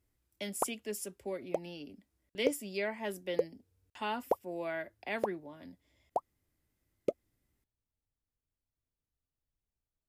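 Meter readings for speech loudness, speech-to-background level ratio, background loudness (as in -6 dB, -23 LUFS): -39.0 LUFS, 0.5 dB, -39.5 LUFS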